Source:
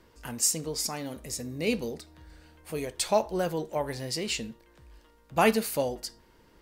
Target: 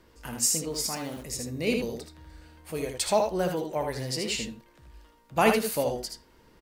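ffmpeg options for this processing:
-filter_complex "[0:a]aecho=1:1:62|78:0.266|0.531,asplit=3[a][b][c];[a]afade=t=out:st=0.73:d=0.02[d];[b]aeval=exprs='val(0)*gte(abs(val(0)),0.00631)':c=same,afade=t=in:st=0.73:d=0.02,afade=t=out:st=1.22:d=0.02[e];[c]afade=t=in:st=1.22:d=0.02[f];[d][e][f]amix=inputs=3:normalize=0"

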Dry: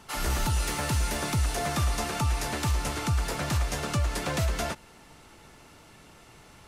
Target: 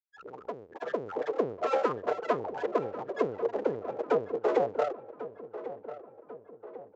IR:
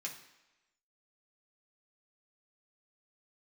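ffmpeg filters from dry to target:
-filter_complex "[0:a]afftfilt=real='re*gte(hypot(re,im),0.112)':imag='im*gte(hypot(re,im),0.112)':win_size=1024:overlap=0.75,afftdn=nr=35:nf=-45,adynamicequalizer=threshold=0.00282:dfrequency=800:dqfactor=5.2:tfrequency=800:tqfactor=5.2:attack=5:release=100:ratio=0.375:range=2:mode=cutabove:tftype=bell,dynaudnorm=f=210:g=9:m=12dB,aresample=16000,aeval=exprs='abs(val(0))':c=same,aresample=44100,highpass=f=470:t=q:w=4.9,asplit=2[a][b];[b]adelay=1050,lowpass=f=2.1k:p=1,volume=-13dB,asplit=2[c][d];[d]adelay=1050,lowpass=f=2.1k:p=1,volume=0.53,asplit=2[e][f];[f]adelay=1050,lowpass=f=2.1k:p=1,volume=0.53,asplit=2[g][h];[h]adelay=1050,lowpass=f=2.1k:p=1,volume=0.53,asplit=2[i][j];[j]adelay=1050,lowpass=f=2.1k:p=1,volume=0.53[k];[a][c][e][g][i][k]amix=inputs=6:normalize=0,asetrate=42336,aresample=44100,volume=-6.5dB"

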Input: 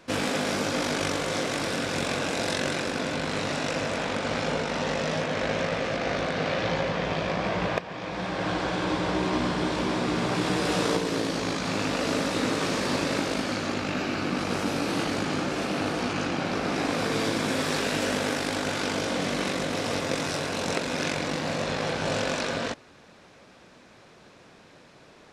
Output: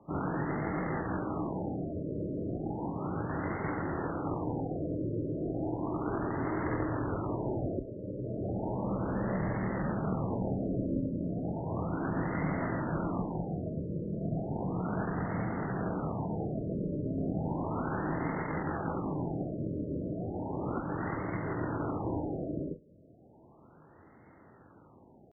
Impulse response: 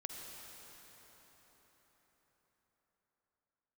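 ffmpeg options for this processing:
-filter_complex "[0:a]aeval=exprs='clip(val(0),-1,0.0473)':c=same,asetrate=23361,aresample=44100,atempo=1.88775,afreqshift=28[a];[1:a]atrim=start_sample=2205,afade=t=out:st=0.14:d=0.01,atrim=end_sample=6615,asetrate=88200,aresample=44100[b];[a][b]afir=irnorm=-1:irlink=0,afftfilt=real='re*lt(b*sr/1024,620*pow(2200/620,0.5+0.5*sin(2*PI*0.34*pts/sr)))':imag='im*lt(b*sr/1024,620*pow(2200/620,0.5+0.5*sin(2*PI*0.34*pts/sr)))':win_size=1024:overlap=0.75,volume=6.5dB"

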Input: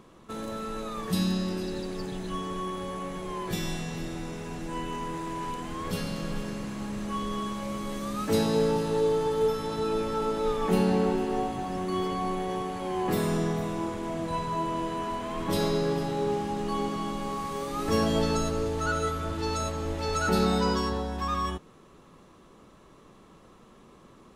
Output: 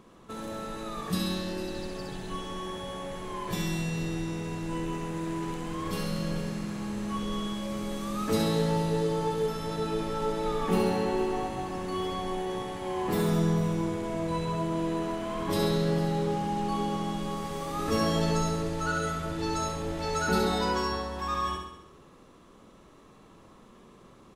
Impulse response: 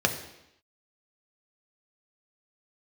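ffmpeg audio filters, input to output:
-af "aecho=1:1:67|134|201|268|335|402|469|536:0.596|0.334|0.187|0.105|0.0586|0.0328|0.0184|0.0103,volume=-2dB"

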